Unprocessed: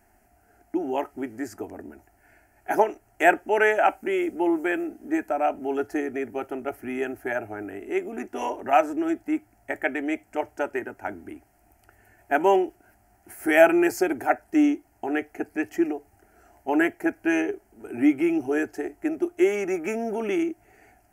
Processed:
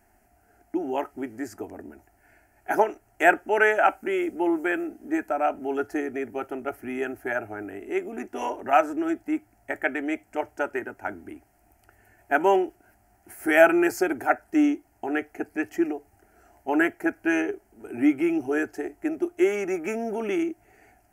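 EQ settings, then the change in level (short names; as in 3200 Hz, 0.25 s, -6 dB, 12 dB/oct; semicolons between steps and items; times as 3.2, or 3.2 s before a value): dynamic EQ 1400 Hz, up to +5 dB, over -42 dBFS, Q 3.2; -1.0 dB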